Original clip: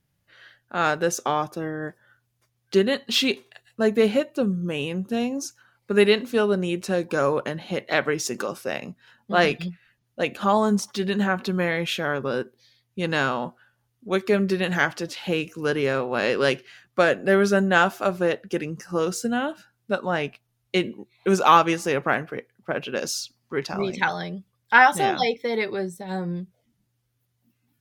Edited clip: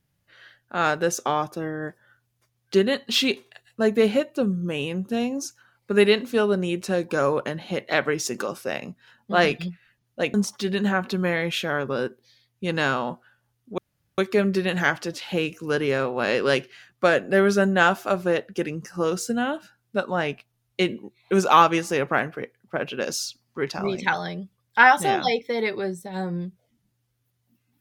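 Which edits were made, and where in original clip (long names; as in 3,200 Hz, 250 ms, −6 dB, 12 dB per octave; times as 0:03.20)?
0:10.34–0:10.69: remove
0:14.13: splice in room tone 0.40 s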